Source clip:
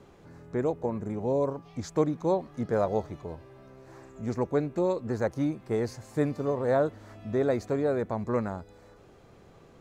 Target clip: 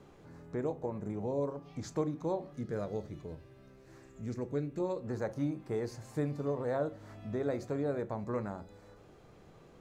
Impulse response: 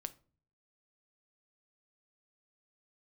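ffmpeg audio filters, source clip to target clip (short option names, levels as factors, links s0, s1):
-filter_complex "[0:a]asettb=1/sr,asplit=3[s0][s1][s2];[s0]atrim=end=2.534[s3];[s1]atrim=start=2.53:end=4.8,asetpts=PTS-STARTPTS,afade=t=in:d=0.004:c=qsin,afade=t=out:st=2.266:d=0.004:c=qsin,equalizer=f=840:t=o:w=1.2:g=-10.5[s4];[s2]atrim=start=4.796[s5];[s3][s4]acrossfade=d=0.004:c1=hsin:c2=qsin[s6];[s6][s5]acrossfade=d=0.004:c1=qsin:c2=hsin,acompressor=threshold=0.0158:ratio=1.5[s7];[1:a]atrim=start_sample=2205[s8];[s7][s8]afir=irnorm=-1:irlink=0"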